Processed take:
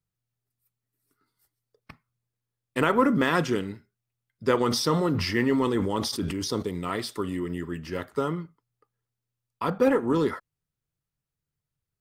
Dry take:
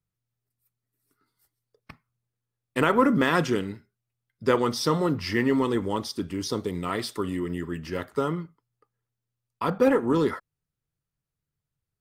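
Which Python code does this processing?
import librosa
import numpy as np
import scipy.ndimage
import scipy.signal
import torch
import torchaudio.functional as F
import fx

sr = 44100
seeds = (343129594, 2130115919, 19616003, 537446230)

y = fx.sustainer(x, sr, db_per_s=34.0, at=(4.6, 6.61), fade=0.02)
y = y * librosa.db_to_amplitude(-1.0)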